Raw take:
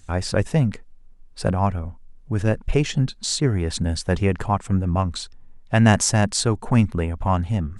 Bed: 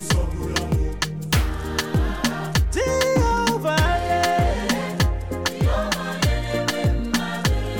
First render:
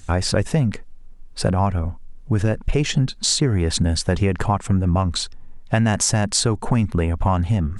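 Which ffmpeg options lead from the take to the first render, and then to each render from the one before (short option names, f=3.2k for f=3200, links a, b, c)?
-filter_complex "[0:a]asplit=2[a][b];[b]alimiter=limit=-12.5dB:level=0:latency=1,volume=2dB[c];[a][c]amix=inputs=2:normalize=0,acompressor=threshold=-15dB:ratio=4"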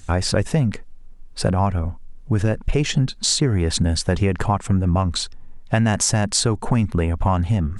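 -af anull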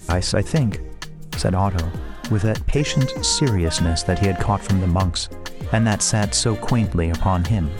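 -filter_complex "[1:a]volume=-10dB[a];[0:a][a]amix=inputs=2:normalize=0"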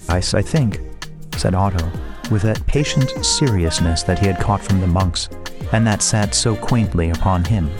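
-af "volume=2.5dB"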